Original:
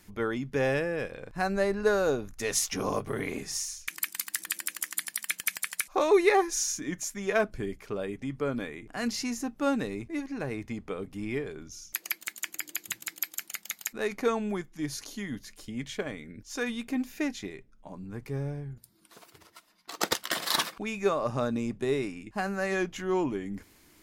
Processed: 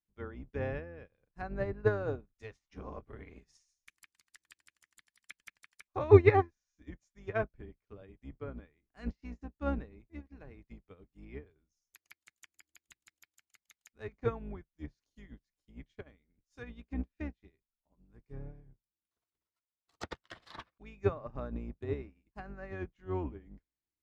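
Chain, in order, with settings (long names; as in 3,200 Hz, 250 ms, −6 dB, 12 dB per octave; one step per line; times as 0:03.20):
sub-octave generator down 2 octaves, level +3 dB
treble cut that deepens with the level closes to 2,200 Hz, closed at −25 dBFS
expander for the loud parts 2.5 to 1, over −45 dBFS
level +3 dB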